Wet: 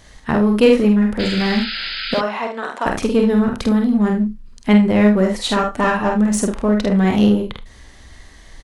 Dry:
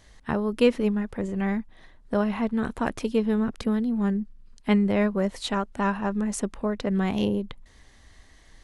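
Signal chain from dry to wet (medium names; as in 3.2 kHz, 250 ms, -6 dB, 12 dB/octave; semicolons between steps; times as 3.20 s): 2.14–2.86 s: Chebyshev band-pass 620–6800 Hz, order 2; early reflections 48 ms -4 dB, 77 ms -11 dB; on a send at -15 dB: reverberation, pre-delay 23 ms; 1.19–2.21 s: on the sum: painted sound noise 1.3–5.1 kHz -35 dBFS; 5.58–6.13 s: comb 6.7 ms, depth 59%; in parallel at -6.5 dB: overload inside the chain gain 24.5 dB; on the sum: trim +5.5 dB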